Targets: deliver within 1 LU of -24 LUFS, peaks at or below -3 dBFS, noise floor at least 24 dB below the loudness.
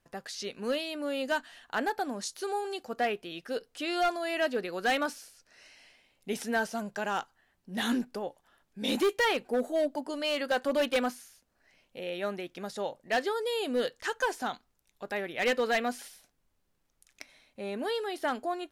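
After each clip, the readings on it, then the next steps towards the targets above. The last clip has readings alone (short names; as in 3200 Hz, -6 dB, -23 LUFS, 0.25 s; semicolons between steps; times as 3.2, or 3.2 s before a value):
clipped 1.2%; flat tops at -22.0 dBFS; loudness -32.0 LUFS; peak -22.0 dBFS; loudness target -24.0 LUFS
-> clip repair -22 dBFS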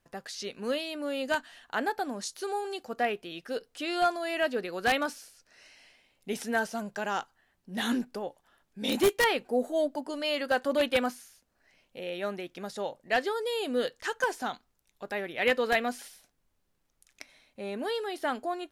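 clipped 0.0%; loudness -31.0 LUFS; peak -13.0 dBFS; loudness target -24.0 LUFS
-> gain +7 dB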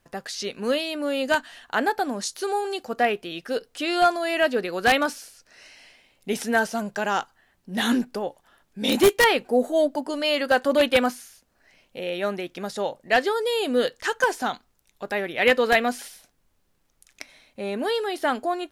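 loudness -24.0 LUFS; peak -6.0 dBFS; noise floor -67 dBFS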